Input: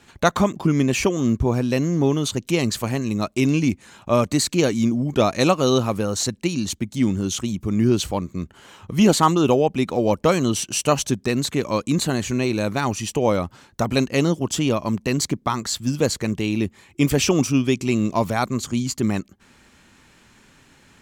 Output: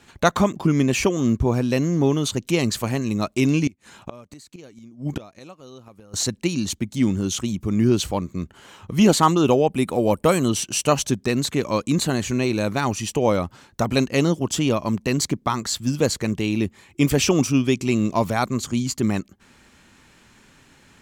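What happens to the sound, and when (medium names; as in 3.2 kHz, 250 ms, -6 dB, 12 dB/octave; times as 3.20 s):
3.67–6.14 s: inverted gate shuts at -15 dBFS, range -25 dB
9.72–10.49 s: resonant high shelf 7.4 kHz +6.5 dB, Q 3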